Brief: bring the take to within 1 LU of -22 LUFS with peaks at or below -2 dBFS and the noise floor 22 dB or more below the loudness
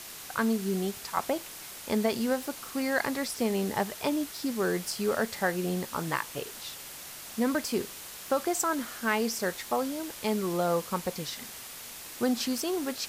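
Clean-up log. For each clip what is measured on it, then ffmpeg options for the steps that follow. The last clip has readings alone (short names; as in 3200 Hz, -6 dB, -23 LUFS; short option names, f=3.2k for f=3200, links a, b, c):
noise floor -44 dBFS; noise floor target -53 dBFS; loudness -31.0 LUFS; peak -12.5 dBFS; loudness target -22.0 LUFS
-> -af "afftdn=nr=9:nf=-44"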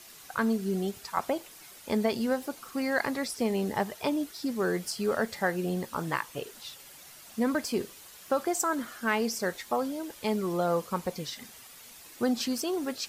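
noise floor -50 dBFS; noise floor target -53 dBFS
-> -af "afftdn=nr=6:nf=-50"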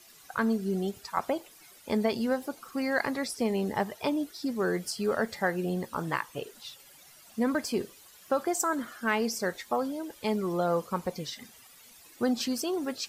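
noise floor -55 dBFS; loudness -31.0 LUFS; peak -13.5 dBFS; loudness target -22.0 LUFS
-> -af "volume=9dB"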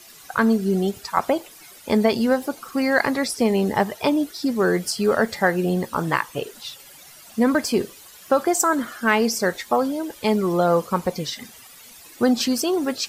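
loudness -22.0 LUFS; peak -4.5 dBFS; noise floor -46 dBFS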